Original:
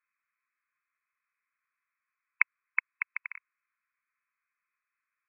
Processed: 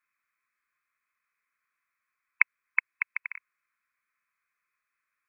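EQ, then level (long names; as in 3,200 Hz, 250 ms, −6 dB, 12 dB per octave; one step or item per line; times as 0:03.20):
dynamic equaliser 1,200 Hz, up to −4 dB, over −51 dBFS, Q 2.4
+3.5 dB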